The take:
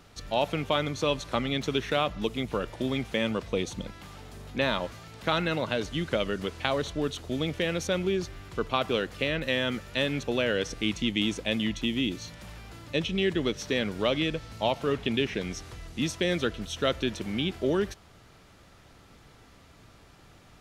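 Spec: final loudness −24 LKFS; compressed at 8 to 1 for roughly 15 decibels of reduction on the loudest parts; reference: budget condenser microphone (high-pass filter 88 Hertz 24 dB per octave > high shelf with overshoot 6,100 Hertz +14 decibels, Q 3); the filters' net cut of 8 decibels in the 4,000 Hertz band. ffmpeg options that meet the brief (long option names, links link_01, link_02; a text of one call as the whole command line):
ffmpeg -i in.wav -af "equalizer=frequency=4000:width_type=o:gain=-4,acompressor=threshold=-38dB:ratio=8,highpass=frequency=88:width=0.5412,highpass=frequency=88:width=1.3066,highshelf=frequency=6100:width_type=q:width=3:gain=14,volume=18dB" out.wav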